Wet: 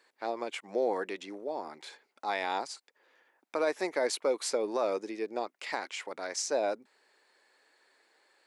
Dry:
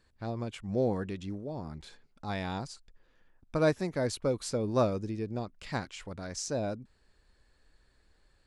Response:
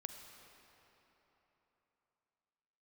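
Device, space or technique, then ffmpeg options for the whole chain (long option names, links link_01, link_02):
laptop speaker: -af "highpass=frequency=350:width=0.5412,highpass=frequency=350:width=1.3066,equalizer=frequency=860:width_type=o:width=0.52:gain=4.5,equalizer=frequency=2100:width_type=o:width=0.43:gain=6,alimiter=limit=-23.5dB:level=0:latency=1:release=82,volume=4dB"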